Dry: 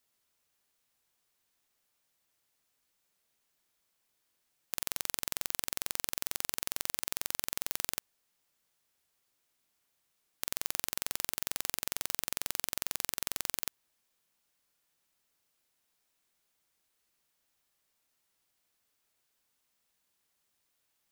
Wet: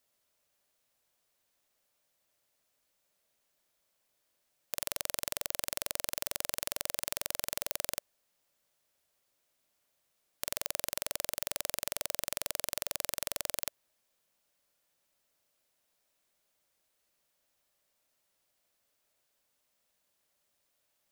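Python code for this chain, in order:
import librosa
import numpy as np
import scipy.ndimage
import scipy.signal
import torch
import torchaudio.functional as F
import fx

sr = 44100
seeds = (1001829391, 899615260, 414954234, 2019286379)

y = fx.peak_eq(x, sr, hz=590.0, db=8.5, octaves=0.42)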